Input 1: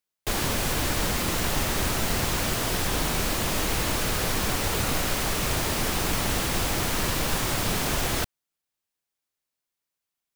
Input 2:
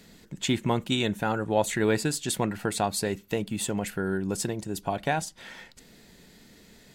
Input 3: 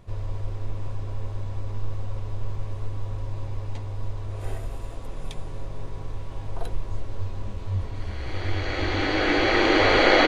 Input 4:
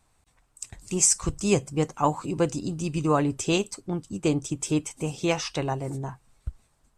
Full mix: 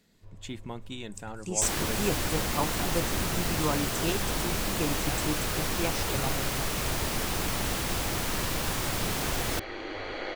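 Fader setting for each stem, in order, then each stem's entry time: -4.0, -13.5, -18.5, -7.5 dB; 1.35, 0.00, 0.15, 0.55 s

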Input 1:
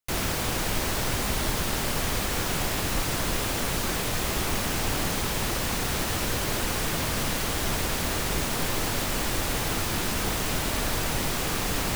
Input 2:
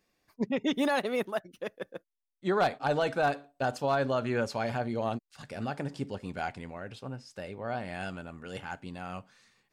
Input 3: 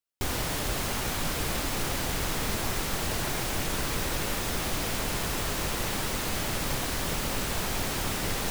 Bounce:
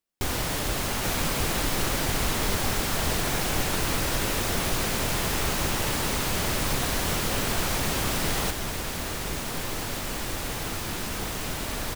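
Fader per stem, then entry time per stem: -4.0, -19.5, +2.0 dB; 0.95, 0.00, 0.00 s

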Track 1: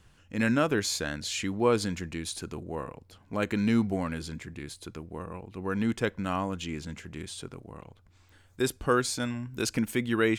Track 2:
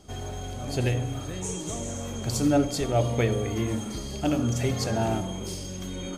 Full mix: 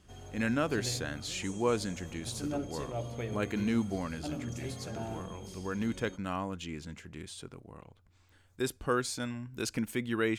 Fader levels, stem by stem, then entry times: -5.0, -13.5 dB; 0.00, 0.00 s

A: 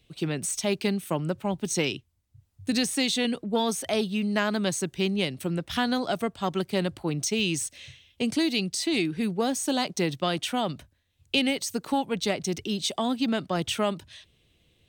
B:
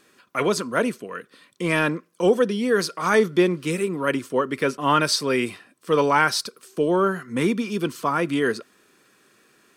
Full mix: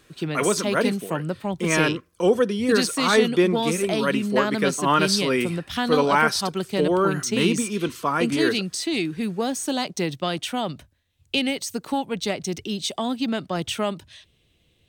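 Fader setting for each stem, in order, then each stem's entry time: +1.0, -0.5 dB; 0.00, 0.00 s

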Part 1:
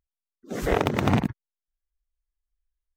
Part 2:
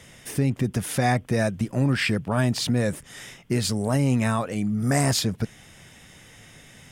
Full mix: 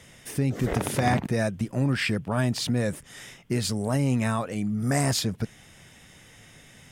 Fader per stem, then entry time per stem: -7.0, -2.5 dB; 0.00, 0.00 s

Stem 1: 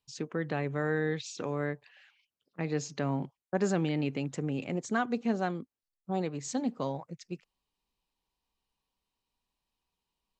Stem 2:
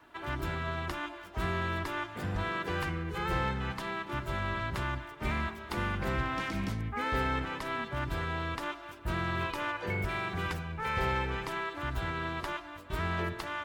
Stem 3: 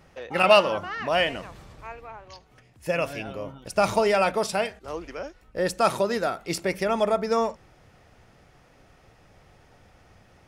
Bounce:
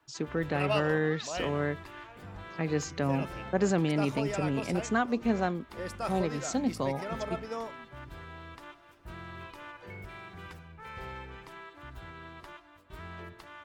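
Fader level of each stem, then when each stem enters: +2.0, -11.5, -14.0 dB; 0.00, 0.00, 0.20 s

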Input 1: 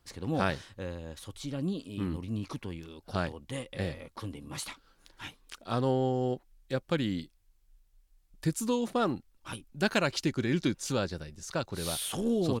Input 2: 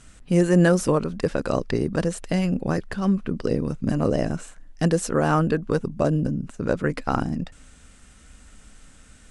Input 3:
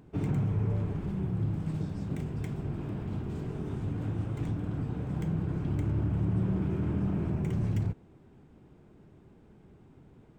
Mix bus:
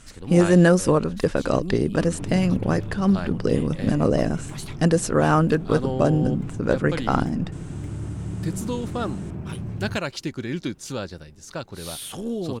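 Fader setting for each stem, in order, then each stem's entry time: 0.0, +2.0, -2.0 dB; 0.00, 0.00, 2.05 s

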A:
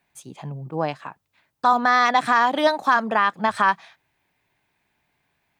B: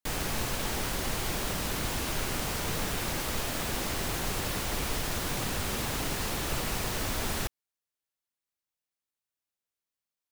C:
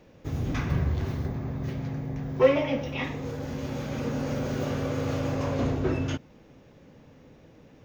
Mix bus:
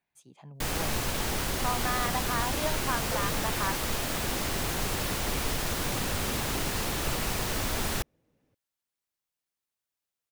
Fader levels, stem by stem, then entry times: -14.5, +1.5, -19.5 dB; 0.00, 0.55, 0.70 s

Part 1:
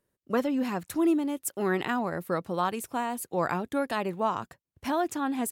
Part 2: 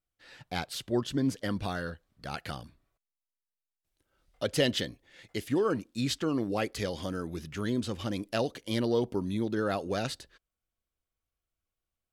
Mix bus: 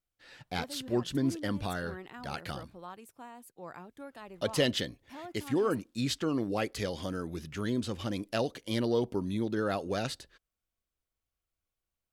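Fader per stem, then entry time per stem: -17.5, -1.0 dB; 0.25, 0.00 s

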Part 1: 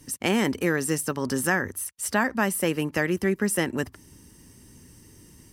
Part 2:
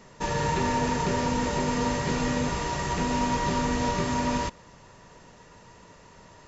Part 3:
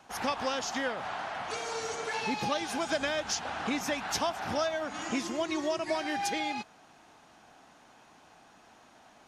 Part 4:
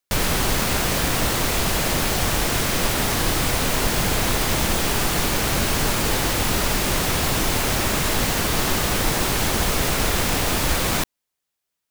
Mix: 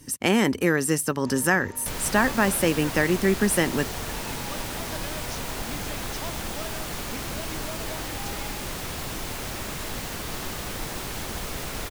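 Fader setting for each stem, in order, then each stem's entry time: +2.5, -17.5, -9.0, -11.5 dB; 0.00, 1.05, 2.00, 1.75 s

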